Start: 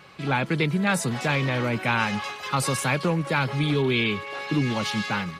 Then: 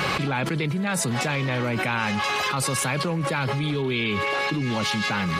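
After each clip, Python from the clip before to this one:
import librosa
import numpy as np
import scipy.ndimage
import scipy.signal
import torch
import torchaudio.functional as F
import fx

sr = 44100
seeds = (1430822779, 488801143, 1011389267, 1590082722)

y = fx.env_flatten(x, sr, amount_pct=100)
y = y * 10.0 ** (-5.0 / 20.0)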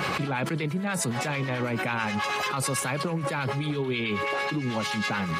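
y = fx.low_shelf(x, sr, hz=68.0, db=-8.5)
y = fx.harmonic_tremolo(y, sr, hz=9.2, depth_pct=50, crossover_hz=1000.0)
y = fx.peak_eq(y, sr, hz=3800.0, db=-3.5, octaves=1.5)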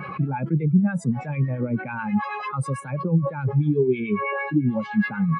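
y = fx.spectral_expand(x, sr, expansion=2.5)
y = y * 10.0 ** (5.5 / 20.0)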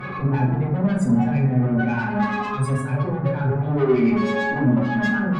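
y = fx.tube_stage(x, sr, drive_db=26.0, bias=0.4)
y = fx.rev_fdn(y, sr, rt60_s=0.93, lf_ratio=1.55, hf_ratio=0.4, size_ms=24.0, drr_db=-5.5)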